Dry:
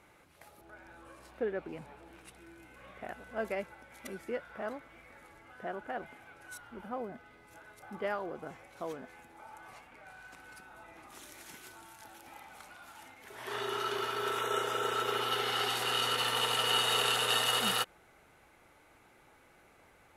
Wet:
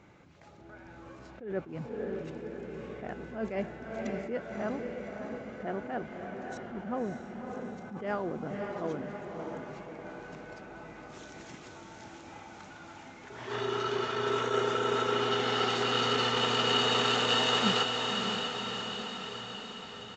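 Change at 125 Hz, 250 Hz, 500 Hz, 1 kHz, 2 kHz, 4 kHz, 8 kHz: +9.5 dB, +10.0 dB, +5.5 dB, +3.0 dB, +2.0 dB, +2.0 dB, -3.5 dB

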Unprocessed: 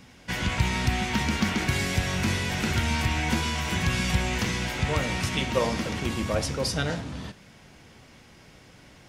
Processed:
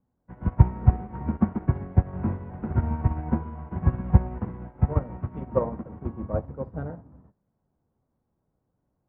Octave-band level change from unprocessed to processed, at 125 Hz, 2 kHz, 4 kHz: +3.5 dB, -21.0 dB, under -40 dB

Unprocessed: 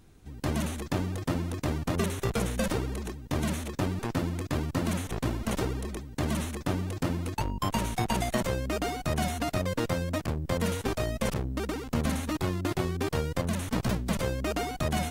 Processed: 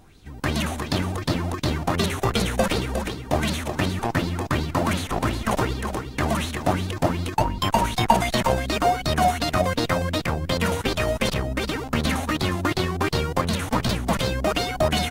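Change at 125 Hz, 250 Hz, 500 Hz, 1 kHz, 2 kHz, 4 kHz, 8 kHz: +5.0 dB, +5.0 dB, +7.5 dB, +11.0 dB, +9.0 dB, +11.0 dB, +5.5 dB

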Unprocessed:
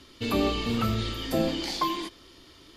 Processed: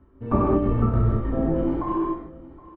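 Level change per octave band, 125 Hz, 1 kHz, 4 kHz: +9.5 dB, +2.5 dB, under -25 dB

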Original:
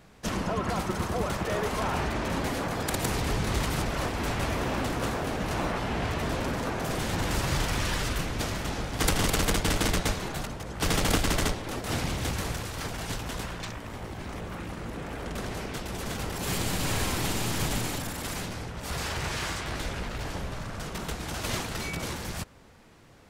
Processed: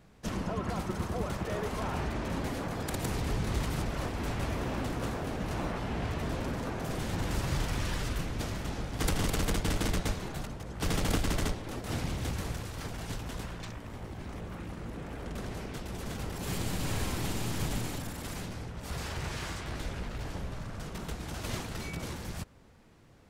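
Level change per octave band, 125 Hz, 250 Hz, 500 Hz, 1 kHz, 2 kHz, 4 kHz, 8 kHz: -2.5 dB, -3.5 dB, -5.0 dB, -6.5 dB, -7.0 dB, -7.5 dB, -7.5 dB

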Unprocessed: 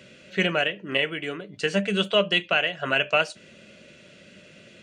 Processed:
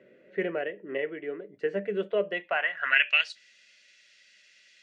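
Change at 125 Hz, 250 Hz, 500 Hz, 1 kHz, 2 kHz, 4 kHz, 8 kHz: under -10 dB, -8.5 dB, -4.0 dB, -6.0 dB, -2.0 dB, -9.0 dB, under -10 dB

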